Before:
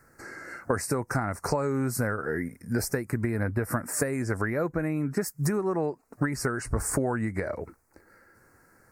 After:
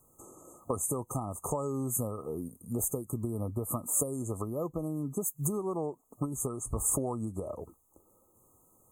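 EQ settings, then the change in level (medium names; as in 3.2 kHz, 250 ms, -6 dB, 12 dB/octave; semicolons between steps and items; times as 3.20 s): brick-wall FIR band-stop 1.3–6.2 kHz; treble shelf 4.9 kHz +11 dB; -6.0 dB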